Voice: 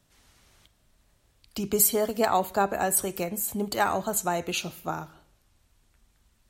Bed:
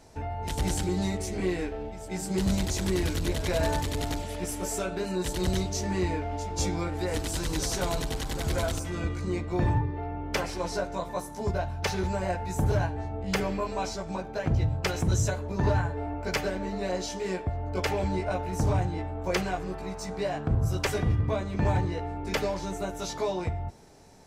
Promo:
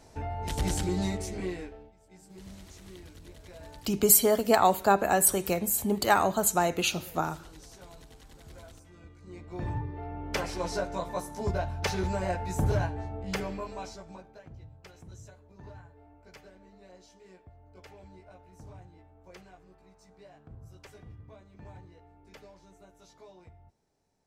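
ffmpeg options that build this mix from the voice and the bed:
ffmpeg -i stem1.wav -i stem2.wav -filter_complex "[0:a]adelay=2300,volume=2dB[link_01];[1:a]volume=19dB,afade=type=out:start_time=1.06:duration=0.87:silence=0.1,afade=type=in:start_time=9.2:duration=1.38:silence=0.1,afade=type=out:start_time=12.65:duration=1.84:silence=0.0794328[link_02];[link_01][link_02]amix=inputs=2:normalize=0" out.wav

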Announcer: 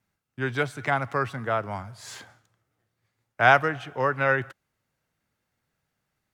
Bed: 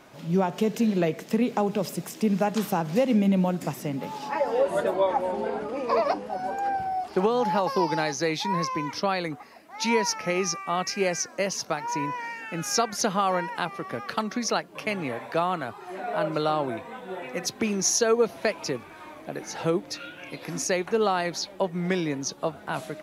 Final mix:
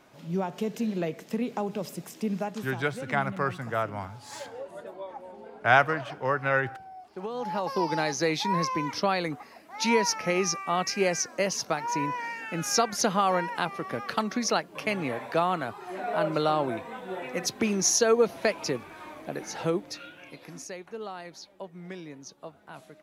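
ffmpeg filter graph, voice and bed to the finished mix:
ffmpeg -i stem1.wav -i stem2.wav -filter_complex "[0:a]adelay=2250,volume=-2.5dB[link_01];[1:a]volume=10.5dB,afade=type=out:start_time=2.34:duration=0.45:silence=0.298538,afade=type=in:start_time=7.15:duration=1.03:silence=0.149624,afade=type=out:start_time=19.27:duration=1.45:silence=0.188365[link_02];[link_01][link_02]amix=inputs=2:normalize=0" out.wav

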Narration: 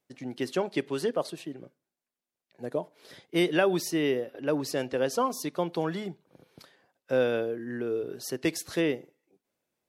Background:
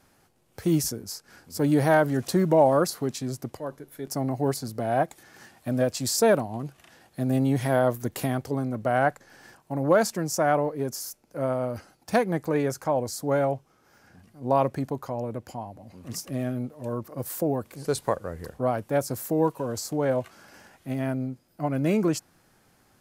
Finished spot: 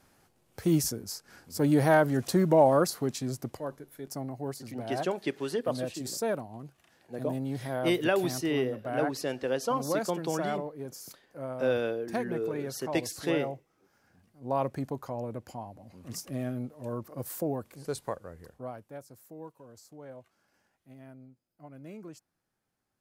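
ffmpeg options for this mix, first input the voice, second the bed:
ffmpeg -i stem1.wav -i stem2.wav -filter_complex "[0:a]adelay=4500,volume=-2.5dB[link_01];[1:a]volume=4dB,afade=type=out:start_time=3.63:duration=0.68:silence=0.375837,afade=type=in:start_time=14.31:duration=0.51:silence=0.501187,afade=type=out:start_time=17.24:duration=1.81:silence=0.141254[link_02];[link_01][link_02]amix=inputs=2:normalize=0" out.wav

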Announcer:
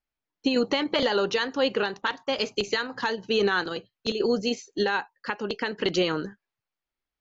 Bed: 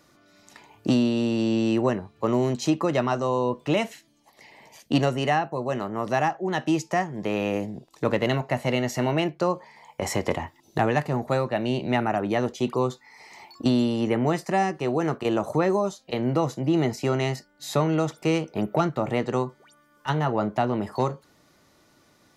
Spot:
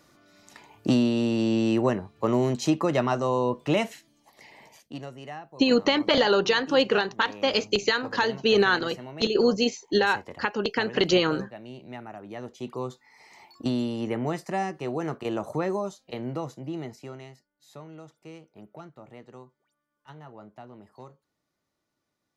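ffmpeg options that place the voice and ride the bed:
ffmpeg -i stem1.wav -i stem2.wav -filter_complex "[0:a]adelay=5150,volume=3dB[link_01];[1:a]volume=10.5dB,afade=type=out:start_time=4.63:duration=0.29:silence=0.158489,afade=type=in:start_time=12.23:duration=1:silence=0.281838,afade=type=out:start_time=15.79:duration=1.54:silence=0.158489[link_02];[link_01][link_02]amix=inputs=2:normalize=0" out.wav

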